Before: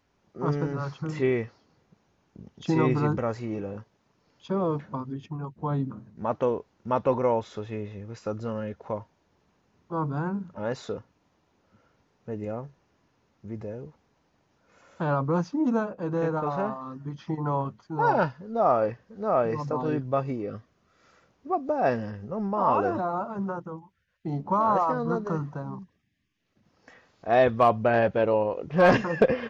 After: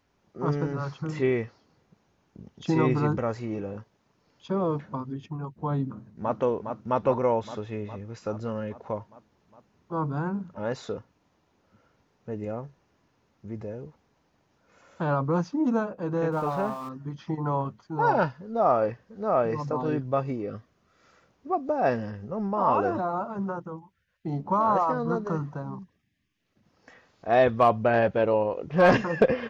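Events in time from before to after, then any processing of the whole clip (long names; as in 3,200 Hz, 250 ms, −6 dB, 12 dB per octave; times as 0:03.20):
0:05.84–0:06.38: delay throw 410 ms, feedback 70%, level −6 dB
0:16.32–0:16.89: converter with a step at zero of −43.5 dBFS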